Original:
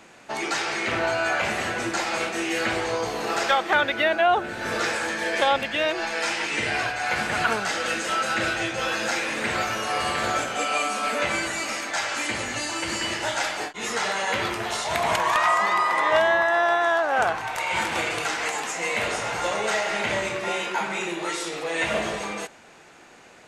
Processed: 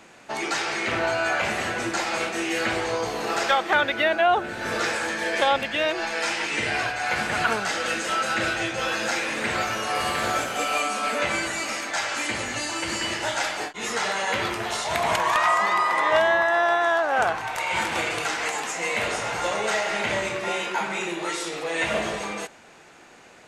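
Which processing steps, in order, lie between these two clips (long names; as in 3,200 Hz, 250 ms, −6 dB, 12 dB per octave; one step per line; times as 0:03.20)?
0:09.95–0:10.81: linear delta modulator 64 kbit/s, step −32.5 dBFS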